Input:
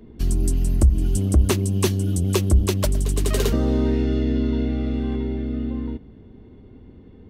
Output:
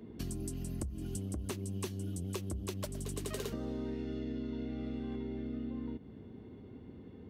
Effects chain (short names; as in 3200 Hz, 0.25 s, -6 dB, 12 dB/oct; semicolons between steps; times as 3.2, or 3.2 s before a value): HPF 94 Hz 12 dB/oct; compressor 6:1, threshold -33 dBFS, peak gain reduction 16.5 dB; gain -3.5 dB